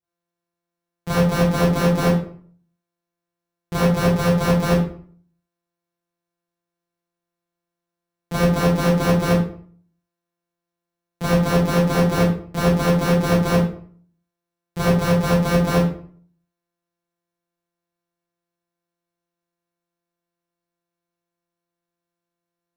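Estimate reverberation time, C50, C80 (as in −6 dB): 0.50 s, 1.0 dB, 7.5 dB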